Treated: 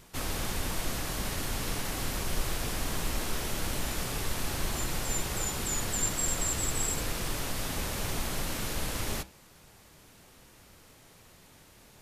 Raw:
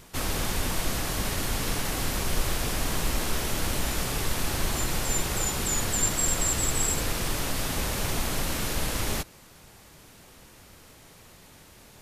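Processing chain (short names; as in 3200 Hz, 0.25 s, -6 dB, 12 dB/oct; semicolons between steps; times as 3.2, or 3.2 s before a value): flange 0.84 Hz, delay 5 ms, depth 6.3 ms, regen -85%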